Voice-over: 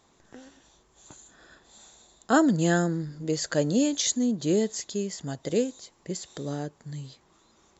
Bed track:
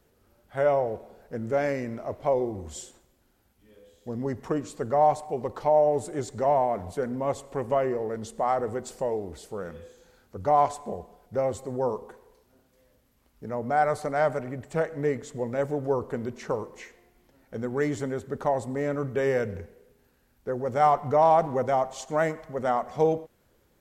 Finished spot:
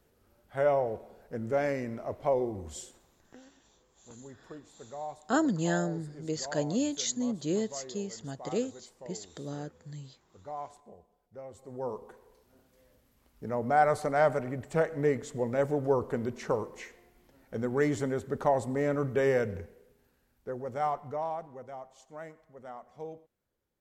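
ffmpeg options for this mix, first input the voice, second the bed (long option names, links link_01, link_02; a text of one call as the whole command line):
ffmpeg -i stem1.wav -i stem2.wav -filter_complex "[0:a]adelay=3000,volume=-6dB[link_01];[1:a]volume=15dB,afade=type=out:start_time=3.11:duration=0.34:silence=0.16788,afade=type=in:start_time=11.5:duration=1.1:silence=0.125893,afade=type=out:start_time=19.13:duration=2.33:silence=0.11885[link_02];[link_01][link_02]amix=inputs=2:normalize=0" out.wav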